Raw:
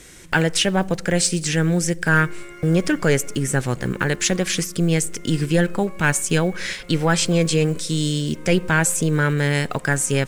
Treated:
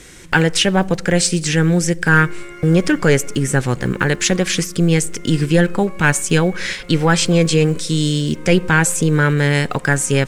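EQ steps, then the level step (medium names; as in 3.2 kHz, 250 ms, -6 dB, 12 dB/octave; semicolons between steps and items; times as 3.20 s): treble shelf 9.4 kHz -6.5 dB; band-stop 640 Hz, Q 12; +4.5 dB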